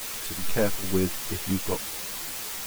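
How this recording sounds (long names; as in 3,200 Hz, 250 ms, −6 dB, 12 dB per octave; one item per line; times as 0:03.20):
chopped level 2.4 Hz, depth 65%, duty 80%
a quantiser's noise floor 6 bits, dither triangular
a shimmering, thickened sound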